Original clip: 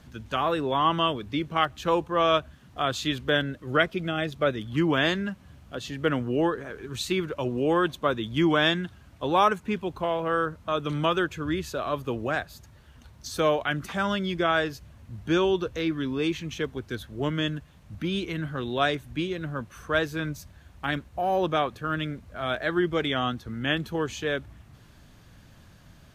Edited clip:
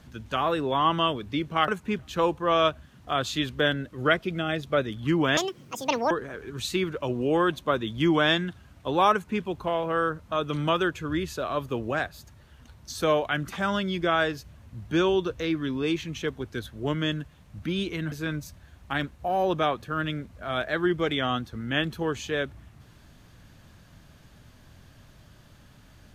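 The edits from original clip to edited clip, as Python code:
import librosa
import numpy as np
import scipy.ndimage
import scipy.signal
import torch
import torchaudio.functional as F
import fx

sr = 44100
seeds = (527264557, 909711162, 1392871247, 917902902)

y = fx.edit(x, sr, fx.speed_span(start_s=5.06, length_s=1.41, speed=1.91),
    fx.duplicate(start_s=9.48, length_s=0.31, to_s=1.68),
    fx.cut(start_s=18.48, length_s=1.57), tone=tone)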